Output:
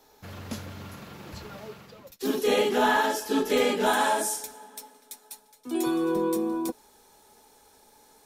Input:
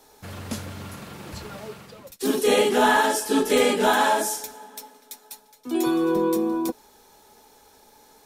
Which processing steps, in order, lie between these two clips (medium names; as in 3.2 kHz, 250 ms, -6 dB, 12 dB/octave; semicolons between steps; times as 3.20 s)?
peaking EQ 9 kHz -9.5 dB 0.39 oct, from 3.86 s +5 dB; trim -4 dB